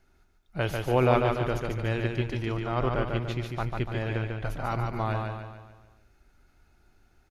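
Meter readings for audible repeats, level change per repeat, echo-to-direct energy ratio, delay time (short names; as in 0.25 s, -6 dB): 5, -6.5 dB, -3.0 dB, 0.145 s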